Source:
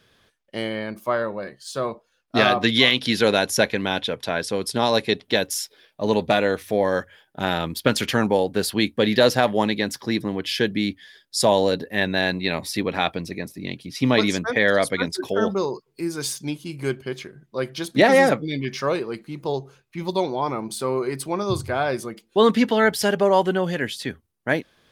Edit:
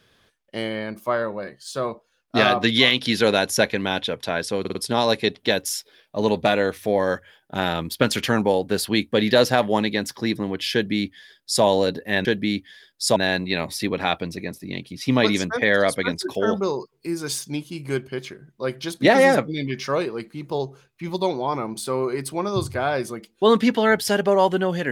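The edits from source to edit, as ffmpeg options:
ffmpeg -i in.wav -filter_complex "[0:a]asplit=6[link_01][link_02][link_03][link_04][link_05][link_06];[link_01]atrim=end=4.652[link_07];[link_02]atrim=start=4.598:end=4.652[link_08];[link_03]atrim=start=4.598:end=4.652[link_09];[link_04]atrim=start=4.598:end=12.102[link_10];[link_05]atrim=start=10.578:end=11.492[link_11];[link_06]atrim=start=12.098[link_12];[link_07][link_08]acrossfade=duration=0.004:curve1=hsin:curve2=hsin[link_13];[link_13][link_09]acrossfade=duration=0.004:curve1=hsin:curve2=hsin[link_14];[link_14][link_10]acrossfade=duration=0.004:curve1=hsin:curve2=hsin[link_15];[link_15][link_11]acrossfade=duration=0.004:curve1=hsin:curve2=hsin[link_16];[link_16][link_12]acrossfade=duration=0.004:curve1=hsin:curve2=hsin" out.wav

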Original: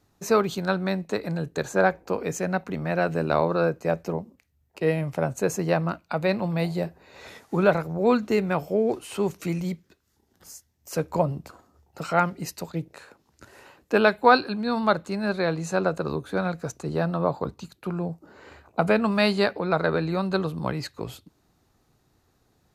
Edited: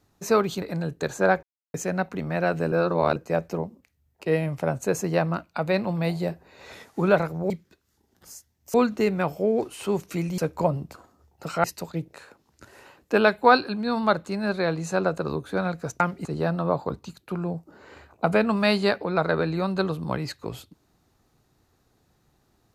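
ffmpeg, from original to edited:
ffmpeg -i in.wav -filter_complex "[0:a]asplit=12[link_01][link_02][link_03][link_04][link_05][link_06][link_07][link_08][link_09][link_10][link_11][link_12];[link_01]atrim=end=0.622[link_13];[link_02]atrim=start=1.168:end=1.98,asetpts=PTS-STARTPTS,afade=type=out:start_time=0.808:duration=0.004:curve=hsin[link_14];[link_03]atrim=start=1.98:end=2.29,asetpts=PTS-STARTPTS,volume=0[link_15];[link_04]atrim=start=2.29:end=3.272,asetpts=PTS-STARTPTS,afade=type=in:duration=0.004:curve=hsin[link_16];[link_05]atrim=start=3.268:end=3.712,asetpts=PTS-STARTPTS,areverse[link_17];[link_06]atrim=start=3.708:end=8.052[link_18];[link_07]atrim=start=9.688:end=10.932[link_19];[link_08]atrim=start=8.048:end=9.692[link_20];[link_09]atrim=start=10.928:end=12.192[link_21];[link_10]atrim=start=12.438:end=16.802[link_22];[link_11]atrim=start=12.188:end=12.442[link_23];[link_12]atrim=start=16.798[link_24];[link_14][link_15][link_16]concat=n=3:v=0:a=1[link_25];[link_13][link_25]acrossfade=duration=0.004:curve1=hsin:curve2=hsin[link_26];[link_26][link_17]acrossfade=duration=0.004:curve1=hsin:curve2=hsin[link_27];[link_27][link_18]acrossfade=duration=0.004:curve1=hsin:curve2=hsin[link_28];[link_28][link_19]acrossfade=duration=0.004:curve1=hsin:curve2=hsin[link_29];[link_29][link_20]acrossfade=duration=0.004:curve1=hsin:curve2=hsin[link_30];[link_30][link_21]acrossfade=duration=0.004:curve1=hsin:curve2=hsin[link_31];[link_31][link_22]acrossfade=duration=0.004:curve1=hsin:curve2=hsin[link_32];[link_32][link_23]acrossfade=duration=0.004:curve1=hsin:curve2=hsin[link_33];[link_33][link_24]acrossfade=duration=0.004:curve1=hsin:curve2=hsin" out.wav

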